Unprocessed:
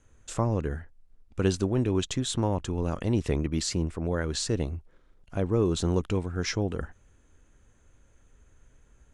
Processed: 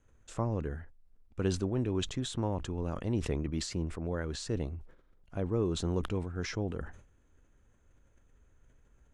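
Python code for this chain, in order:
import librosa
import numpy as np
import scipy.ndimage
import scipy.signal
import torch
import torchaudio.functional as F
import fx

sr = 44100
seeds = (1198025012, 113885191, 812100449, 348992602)

y = fx.high_shelf(x, sr, hz=3500.0, db=-6.5)
y = fx.sustainer(y, sr, db_per_s=98.0)
y = F.gain(torch.from_numpy(y), -6.0).numpy()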